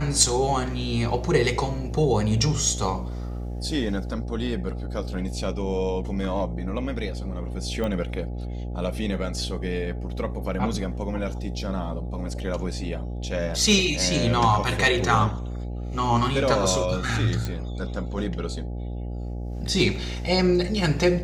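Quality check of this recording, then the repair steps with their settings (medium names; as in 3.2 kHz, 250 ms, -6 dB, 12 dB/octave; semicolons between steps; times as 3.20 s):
buzz 60 Hz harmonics 14 -31 dBFS
7.84 s: pop -17 dBFS
17.45 s: pop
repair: de-click; de-hum 60 Hz, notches 14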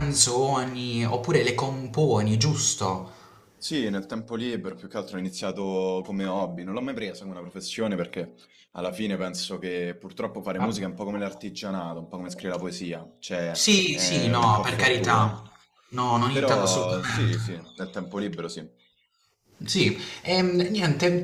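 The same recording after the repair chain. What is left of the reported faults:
nothing left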